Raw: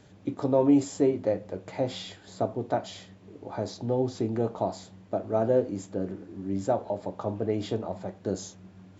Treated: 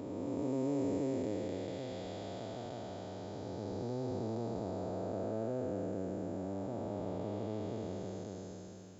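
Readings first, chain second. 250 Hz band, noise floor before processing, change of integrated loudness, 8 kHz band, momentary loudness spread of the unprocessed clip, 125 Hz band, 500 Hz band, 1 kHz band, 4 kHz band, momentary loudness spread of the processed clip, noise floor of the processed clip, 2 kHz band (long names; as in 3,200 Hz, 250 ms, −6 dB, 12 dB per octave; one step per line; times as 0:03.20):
−9.0 dB, −53 dBFS, −10.0 dB, can't be measured, 14 LU, −7.0 dB, −10.5 dB, −11.0 dB, −11.0 dB, 9 LU, −47 dBFS, −9.0 dB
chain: spectrum smeared in time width 1,020 ms
level −4 dB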